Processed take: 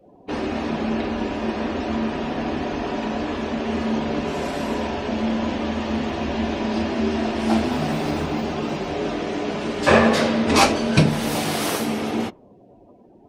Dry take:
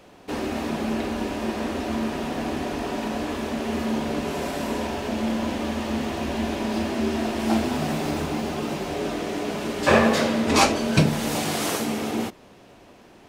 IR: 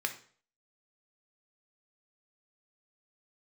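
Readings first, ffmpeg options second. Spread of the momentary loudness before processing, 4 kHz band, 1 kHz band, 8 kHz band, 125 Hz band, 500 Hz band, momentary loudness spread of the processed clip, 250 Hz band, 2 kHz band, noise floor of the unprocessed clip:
9 LU, +2.0 dB, +2.5 dB, −0.5 dB, +2.5 dB, +2.5 dB, 9 LU, +2.5 dB, +2.5 dB, −50 dBFS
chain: -af "afftdn=noise_reduction=26:noise_floor=-46,adynamicequalizer=threshold=0.00251:dfrequency=7100:dqfactor=3.3:tfrequency=7100:tqfactor=3.3:attack=5:release=100:ratio=0.375:range=2.5:mode=cutabove:tftype=bell,volume=2.5dB"

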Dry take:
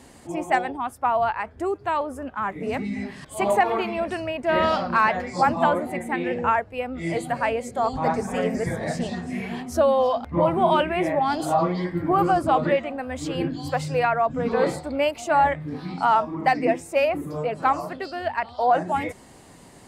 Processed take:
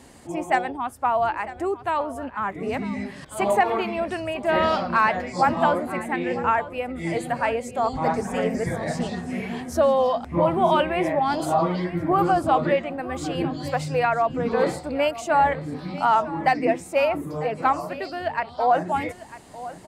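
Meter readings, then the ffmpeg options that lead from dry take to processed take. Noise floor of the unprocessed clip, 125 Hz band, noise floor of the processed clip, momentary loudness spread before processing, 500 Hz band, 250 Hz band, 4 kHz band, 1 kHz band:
−48 dBFS, 0.0 dB, −43 dBFS, 9 LU, 0.0 dB, 0.0 dB, 0.0 dB, 0.0 dB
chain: -af "aecho=1:1:949:0.158"

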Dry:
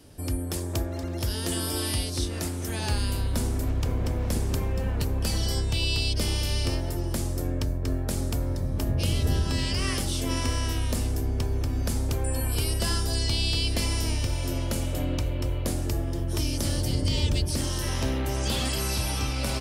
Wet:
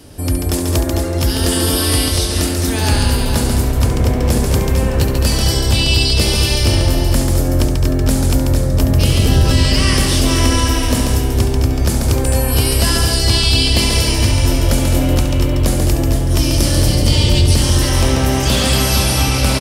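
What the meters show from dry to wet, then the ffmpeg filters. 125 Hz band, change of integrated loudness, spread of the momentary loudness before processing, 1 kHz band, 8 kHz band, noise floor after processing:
+13.0 dB, +13.5 dB, 4 LU, +14.0 dB, +13.5 dB, −18 dBFS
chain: -af "aecho=1:1:69|139|211|459:0.335|0.562|0.376|0.447,acontrast=81,volume=4.5dB"

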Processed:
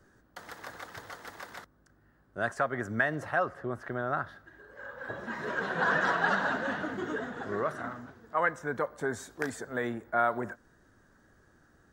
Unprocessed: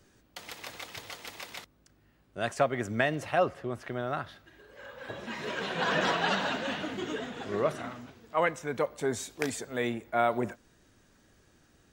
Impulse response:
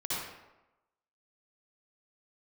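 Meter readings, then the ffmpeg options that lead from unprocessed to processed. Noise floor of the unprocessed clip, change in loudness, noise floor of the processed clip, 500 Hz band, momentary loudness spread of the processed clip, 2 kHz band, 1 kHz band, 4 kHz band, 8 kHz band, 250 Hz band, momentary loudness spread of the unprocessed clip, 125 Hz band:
−65 dBFS, 0.0 dB, −65 dBFS, −3.0 dB, 18 LU, +3.0 dB, +0.5 dB, −9.5 dB, −7.0 dB, −2.0 dB, 16 LU, −2.0 dB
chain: -filter_complex "[0:a]acrossover=split=1000[link_01][link_02];[link_01]alimiter=level_in=1dB:limit=-24dB:level=0:latency=1:release=202,volume=-1dB[link_03];[link_03][link_02]amix=inputs=2:normalize=0,highshelf=frequency=2000:width_type=q:width=3:gain=-6.5"

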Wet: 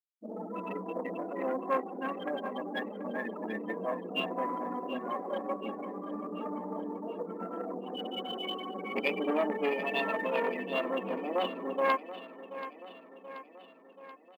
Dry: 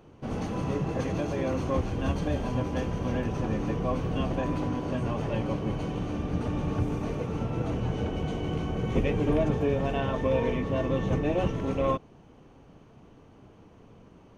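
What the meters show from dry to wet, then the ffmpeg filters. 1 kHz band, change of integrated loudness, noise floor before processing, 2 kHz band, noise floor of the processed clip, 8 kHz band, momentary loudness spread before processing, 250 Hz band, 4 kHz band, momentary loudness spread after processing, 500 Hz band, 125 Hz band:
+0.5 dB, −5.0 dB, −54 dBFS, +3.0 dB, −55 dBFS, can't be measured, 5 LU, −8.0 dB, +3.5 dB, 14 LU, −3.5 dB, below −20 dB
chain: -af "afftfilt=real='re*pow(10,12/40*sin(2*PI*(2*log(max(b,1)*sr/1024/100)/log(2)-(0.31)*(pts-256)/sr)))':imag='im*pow(10,12/40*sin(2*PI*(2*log(max(b,1)*sr/1024/100)/log(2)-(0.31)*(pts-256)/sr)))':win_size=1024:overlap=0.75,afftfilt=real='re*gte(hypot(re,im),0.0447)':imag='im*gte(hypot(re,im),0.0447)':win_size=1024:overlap=0.75,aeval=exprs='0.266*(cos(1*acos(clip(val(0)/0.266,-1,1)))-cos(1*PI/2))+0.106*(cos(2*acos(clip(val(0)/0.266,-1,1)))-cos(2*PI/2))+0.0237*(cos(5*acos(clip(val(0)/0.266,-1,1)))-cos(5*PI/2))+0.00422*(cos(7*acos(clip(val(0)/0.266,-1,1)))-cos(7*PI/2))':channel_layout=same,lowshelf=frequency=400:gain=-9.5,bandreject=frequency=1500:width=9,areverse,acompressor=mode=upward:threshold=-47dB:ratio=2.5,areverse,crystalizer=i=7.5:c=0,aecho=1:1:731|1462|2193|2924|3655|4386:0.211|0.123|0.0711|0.0412|0.0239|0.0139,afftfilt=real='re*between(b*sr/4096,180,5100)':imag='im*between(b*sr/4096,180,5100)':win_size=4096:overlap=0.75,volume=-5dB" -ar 44100 -c:a adpcm_ima_wav

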